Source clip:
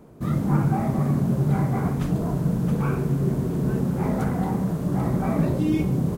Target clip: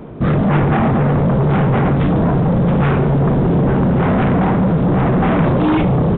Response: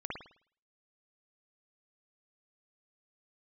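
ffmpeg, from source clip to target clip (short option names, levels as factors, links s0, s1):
-filter_complex "[0:a]asplit=2[s0][s1];[s1]aeval=exprs='0.335*sin(PI/2*5.62*val(0)/0.335)':c=same,volume=0.282[s2];[s0][s2]amix=inputs=2:normalize=0,aresample=8000,aresample=44100,volume=1.78"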